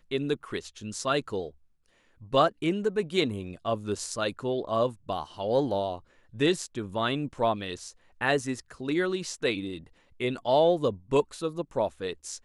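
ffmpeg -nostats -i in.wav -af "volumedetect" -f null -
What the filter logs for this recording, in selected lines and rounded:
mean_volume: -29.3 dB
max_volume: -9.5 dB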